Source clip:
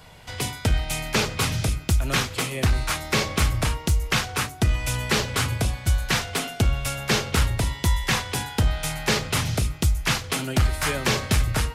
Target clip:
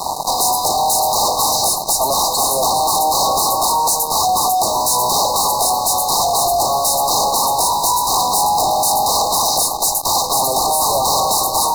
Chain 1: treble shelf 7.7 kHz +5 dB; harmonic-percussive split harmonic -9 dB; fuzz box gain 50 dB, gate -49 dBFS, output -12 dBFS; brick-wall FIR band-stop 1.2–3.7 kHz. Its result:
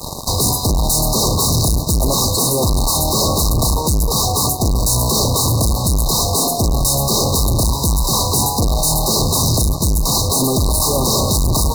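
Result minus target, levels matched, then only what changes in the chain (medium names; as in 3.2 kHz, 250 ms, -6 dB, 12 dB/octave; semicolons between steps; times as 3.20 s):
1 kHz band -8.5 dB
add first: resonant high-pass 790 Hz, resonance Q 5.2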